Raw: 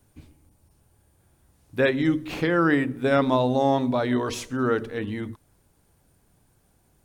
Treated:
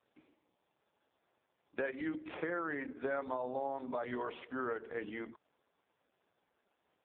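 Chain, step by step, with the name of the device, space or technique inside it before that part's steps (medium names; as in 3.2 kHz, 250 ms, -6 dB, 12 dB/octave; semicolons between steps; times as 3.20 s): 2.21–3.61 s: dynamic bell 2.7 kHz, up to -7 dB, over -53 dBFS, Q 6.2; voicemail (band-pass 440–2700 Hz; compression 6:1, threshold -31 dBFS, peak gain reduction 13 dB; trim -2.5 dB; AMR-NB 4.75 kbps 8 kHz)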